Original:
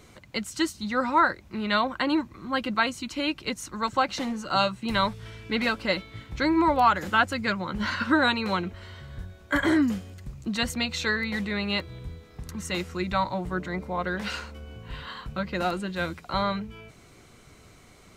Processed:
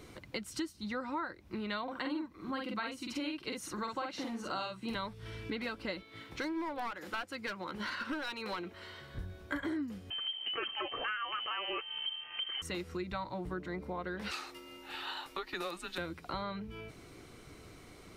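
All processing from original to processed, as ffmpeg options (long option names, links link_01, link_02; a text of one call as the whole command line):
ffmpeg -i in.wav -filter_complex "[0:a]asettb=1/sr,asplit=3[link_01][link_02][link_03];[link_01]atrim=end=1.834[link_04];[link_02]atrim=start=1.83:end=4.95,asetpts=PTS-STARTPTS,afade=type=in:duration=0.004:curve=qsin,afade=type=out:start_time=3.116:duration=0.004:curve=qsin,lowshelf=frequency=120:gain=-8,asplit=2[link_05][link_06];[link_06]adelay=48,volume=-2.5dB[link_07];[link_05][link_07]amix=inputs=2:normalize=0,atrim=end_sample=137592[link_08];[link_03]atrim=start=4.946[link_09];[link_04][link_08]acrossfade=duration=0.004:curve1=hsin:curve2=qsin[link_10];[link_10][link_09]acrossfade=duration=0.004:curve1=qsin:curve2=hsin,asettb=1/sr,asplit=3[link_11][link_12][link_13];[link_11]atrim=end=6.034[link_14];[link_12]atrim=start=6.03:end=9.15,asetpts=PTS-STARTPTS,afade=type=in:duration=0.004:curve=qsin,afade=type=out:start_time=3.116:duration=0.004:curve=qsin,highpass=frequency=450:poles=1,aeval=exprs='clip(val(0),-1,0.0531)':channel_layout=same[link_15];[link_13]atrim=start=9.146[link_16];[link_14][link_15]acrossfade=duration=0.004:curve1=hsin:curve2=qsin[link_17];[link_17][link_16]acrossfade=duration=0.004:curve1=qsin:curve2=hsin,asettb=1/sr,asplit=3[link_18][link_19][link_20];[link_18]atrim=end=10.104[link_21];[link_19]atrim=start=10.1:end=12.62,asetpts=PTS-STARTPTS,afade=type=in:duration=0.004:curve=qsin,afade=type=out:start_time=2.516:duration=0.004:curve=qsin,equalizer=frequency=270:width=1.3:gain=-14.5,aeval=exprs='0.237*sin(PI/2*2.51*val(0)/0.237)':channel_layout=same,lowpass=frequency=2700:width_type=q:width=0.5098,lowpass=frequency=2700:width_type=q:width=0.6013,lowpass=frequency=2700:width_type=q:width=0.9,lowpass=frequency=2700:width_type=q:width=2.563,afreqshift=-3200[link_22];[link_20]atrim=start=12.616[link_23];[link_21][link_22]acrossfade=duration=0.004:curve1=hsin:curve2=qsin[link_24];[link_24][link_23]acrossfade=duration=0.004:curve1=qsin:curve2=hsin,asettb=1/sr,asplit=3[link_25][link_26][link_27];[link_25]atrim=end=14.314[link_28];[link_26]atrim=start=14.31:end=15.98,asetpts=PTS-STARTPTS,afade=type=in:duration=0.004:curve=qsin,afade=type=out:start_time=1.666:duration=0.004:curve=qsin,highpass=600,highshelf=frequency=3800:gain=9,afreqshift=-170[link_29];[link_27]atrim=start=15.976[link_30];[link_28][link_29]acrossfade=duration=0.004:curve1=hsin:curve2=qsin[link_31];[link_31][link_30]acrossfade=duration=0.004:curve1=qsin:curve2=hsin,superequalizer=6b=1.78:7b=1.41:15b=0.631,acompressor=threshold=-35dB:ratio=5,volume=-1.5dB" out.wav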